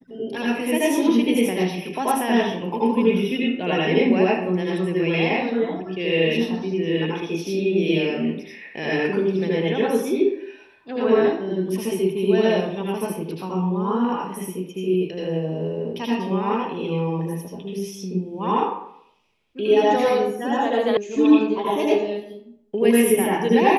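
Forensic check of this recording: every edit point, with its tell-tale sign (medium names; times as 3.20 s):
20.97 s: sound stops dead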